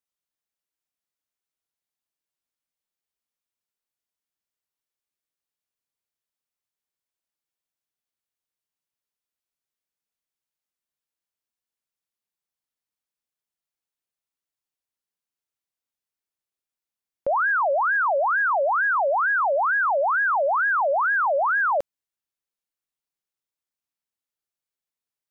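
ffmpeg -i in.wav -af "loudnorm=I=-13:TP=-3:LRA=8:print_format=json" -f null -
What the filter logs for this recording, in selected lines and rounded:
"input_i" : "-21.0",
"input_tp" : "-18.3",
"input_lra" : "5.6",
"input_thresh" : "-31.2",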